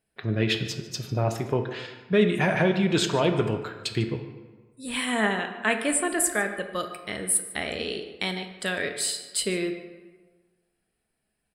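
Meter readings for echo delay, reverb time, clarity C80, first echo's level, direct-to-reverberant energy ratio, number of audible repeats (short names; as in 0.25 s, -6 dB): 0.149 s, 1.4 s, 9.5 dB, -17.5 dB, 5.5 dB, 1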